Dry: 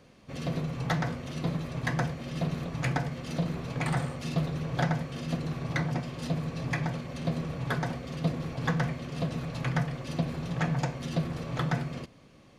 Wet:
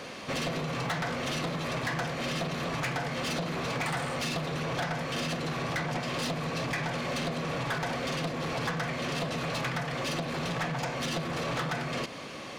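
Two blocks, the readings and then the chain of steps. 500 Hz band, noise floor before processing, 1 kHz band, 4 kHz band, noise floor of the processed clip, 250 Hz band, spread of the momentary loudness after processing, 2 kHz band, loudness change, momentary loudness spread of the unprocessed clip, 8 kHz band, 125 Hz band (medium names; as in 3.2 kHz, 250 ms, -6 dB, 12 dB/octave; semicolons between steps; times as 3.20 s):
+3.5 dB, -56 dBFS, +3.5 dB, +8.0 dB, -41 dBFS, -2.5 dB, 1 LU, +4.0 dB, 0.0 dB, 4 LU, +7.0 dB, -5.0 dB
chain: compression 6:1, threshold -38 dBFS, peak gain reduction 15 dB; overdrive pedal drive 24 dB, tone 7 kHz, clips at -27 dBFS; trim +3.5 dB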